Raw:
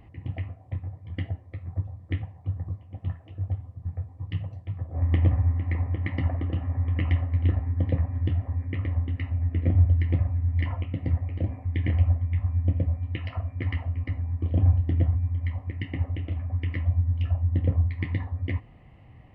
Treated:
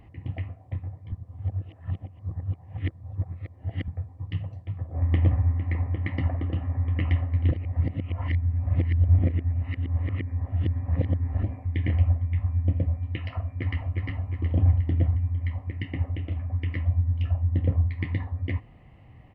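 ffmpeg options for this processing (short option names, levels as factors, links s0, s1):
-filter_complex "[0:a]asplit=2[s0][s1];[s1]afade=t=in:st=13.45:d=0.01,afade=t=out:st=14.06:d=0.01,aecho=0:1:360|720|1080|1440|1800|2160:0.668344|0.300755|0.13534|0.0609028|0.0274063|0.0123328[s2];[s0][s2]amix=inputs=2:normalize=0,asplit=5[s3][s4][s5][s6][s7];[s3]atrim=end=1.122[s8];[s4]atrim=start=1.118:end=3.882,asetpts=PTS-STARTPTS,areverse[s9];[s5]atrim=start=3.878:end=7.512[s10];[s6]atrim=start=7.508:end=11.432,asetpts=PTS-STARTPTS,areverse[s11];[s7]atrim=start=11.428[s12];[s8][s9]acrossfade=d=0.004:c1=hsin:c2=hsin[s13];[s13][s10]acrossfade=d=0.004:c1=hsin:c2=hsin[s14];[s14][s11]acrossfade=d=0.004:c1=hsin:c2=hsin[s15];[s15][s12]acrossfade=d=0.004:c1=hsin:c2=hsin"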